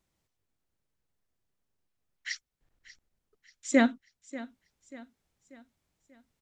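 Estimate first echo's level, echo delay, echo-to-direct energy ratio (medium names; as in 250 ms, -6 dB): -17.5 dB, 588 ms, -16.5 dB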